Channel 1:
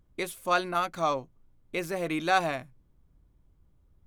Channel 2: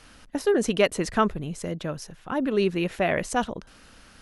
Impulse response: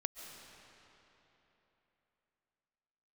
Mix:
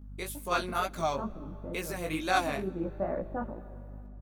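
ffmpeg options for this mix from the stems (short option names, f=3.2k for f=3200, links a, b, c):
-filter_complex "[0:a]highshelf=f=7.2k:g=10,volume=-4.5dB,asplit=3[a][b][c];[b]volume=-19dB[d];[1:a]lowpass=f=1.2k:w=0.5412,lowpass=f=1.2k:w=1.3066,aecho=1:1:3.5:0.44,dynaudnorm=f=370:g=5:m=9dB,volume=-19.5dB,asplit=2[e][f];[f]volume=-7dB[g];[c]apad=whole_len=186143[h];[e][h]sidechaincompress=threshold=-44dB:ratio=8:attack=16:release=101[i];[2:a]atrim=start_sample=2205[j];[d][g]amix=inputs=2:normalize=0[k];[k][j]afir=irnorm=-1:irlink=0[l];[a][i][l]amix=inputs=3:normalize=0,dynaudnorm=f=140:g=7:m=3.5dB,aeval=exprs='val(0)+0.00794*(sin(2*PI*50*n/s)+sin(2*PI*2*50*n/s)/2+sin(2*PI*3*50*n/s)/3+sin(2*PI*4*50*n/s)/4+sin(2*PI*5*50*n/s)/5)':c=same,flanger=delay=15.5:depth=6.6:speed=2.2"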